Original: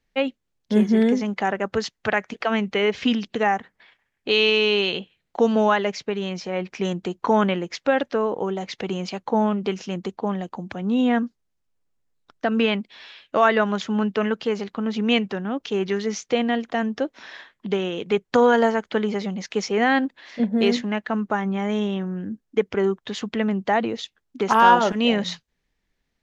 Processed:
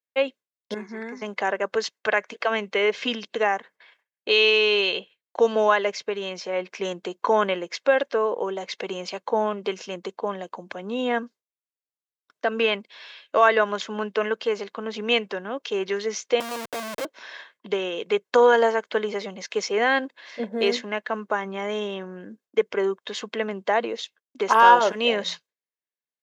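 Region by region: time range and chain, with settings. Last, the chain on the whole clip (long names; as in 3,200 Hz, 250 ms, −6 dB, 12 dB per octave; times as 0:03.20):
0:00.74–0:01.22: high-pass filter 420 Hz 6 dB per octave + high-frequency loss of the air 140 metres + phaser with its sweep stopped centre 1,300 Hz, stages 4
0:16.40–0:17.05: compressor whose output falls as the input rises −25 dBFS, ratio −0.5 + Butterworth low-pass 760 Hz 96 dB per octave + comparator with hysteresis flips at −40.5 dBFS
whole clip: noise gate with hold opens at −46 dBFS; high-pass filter 350 Hz 12 dB per octave; comb filter 1.9 ms, depth 32%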